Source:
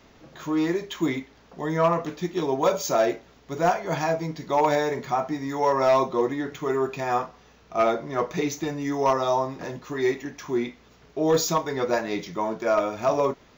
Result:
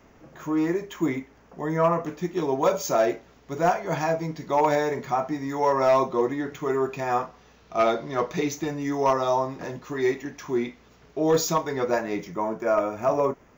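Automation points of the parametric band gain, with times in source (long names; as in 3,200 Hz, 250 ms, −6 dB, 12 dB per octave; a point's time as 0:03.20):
parametric band 3,900 Hz 0.84 octaves
0:01.96 −12 dB
0:02.57 −4.5 dB
0:07.24 −4.5 dB
0:08.01 +5.5 dB
0:08.60 −3 dB
0:11.68 −3 dB
0:12.39 −15 dB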